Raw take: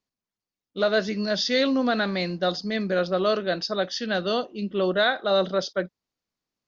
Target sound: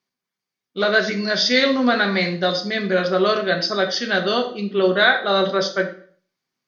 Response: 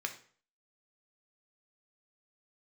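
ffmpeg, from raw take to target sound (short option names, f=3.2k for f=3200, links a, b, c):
-filter_complex "[1:a]atrim=start_sample=2205,asetrate=41013,aresample=44100[a];[0:a][a]afir=irnorm=-1:irlink=0,volume=5.5dB"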